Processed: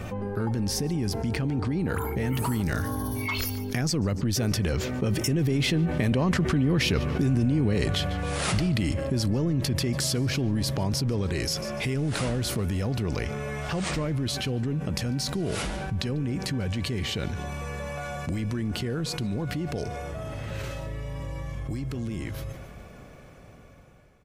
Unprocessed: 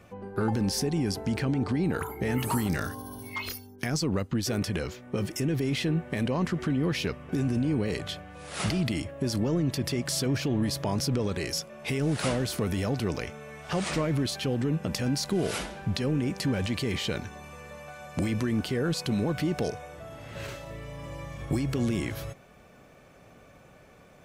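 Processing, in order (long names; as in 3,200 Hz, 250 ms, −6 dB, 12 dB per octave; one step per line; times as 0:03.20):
fade-out on the ending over 5.54 s
source passing by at 0:06.78, 8 m/s, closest 8.6 metres
low-shelf EQ 130 Hz +10.5 dB
on a send: repeating echo 146 ms, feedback 36%, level −21.5 dB
on the sum: envelope flattener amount 70%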